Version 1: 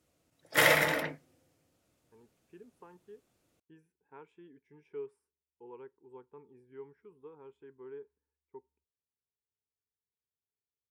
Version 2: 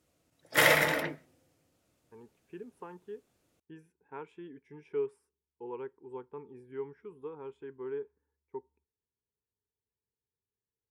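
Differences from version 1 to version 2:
speech +8.5 dB; reverb: on, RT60 0.35 s

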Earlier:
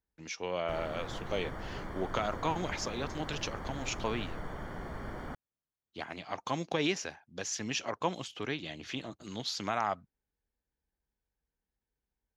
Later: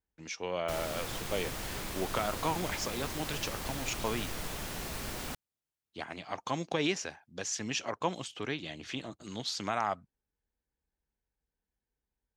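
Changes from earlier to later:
speech: add peaking EQ 8.4 kHz +12.5 dB 0.21 oct; background: remove Savitzky-Golay filter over 41 samples

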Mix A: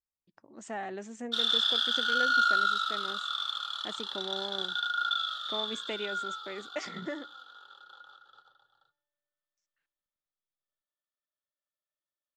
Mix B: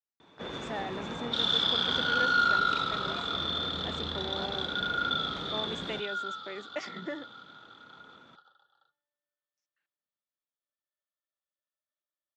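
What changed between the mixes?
first sound: unmuted; master: add band-pass 160–5400 Hz

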